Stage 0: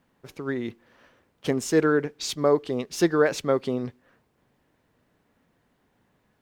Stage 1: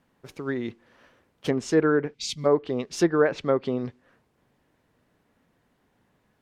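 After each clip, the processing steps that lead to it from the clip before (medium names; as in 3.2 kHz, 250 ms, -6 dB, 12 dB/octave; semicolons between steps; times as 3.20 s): time-frequency box 2.14–2.46 s, 270–2000 Hz -15 dB; low-pass that closes with the level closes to 2.1 kHz, closed at -18.5 dBFS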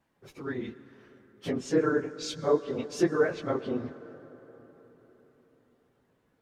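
phase randomisation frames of 50 ms; on a send at -15 dB: reverberation RT60 4.4 s, pre-delay 103 ms; on the sum: trim -5.5 dB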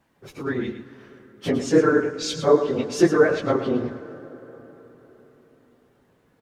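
delay 109 ms -10 dB; trim +8 dB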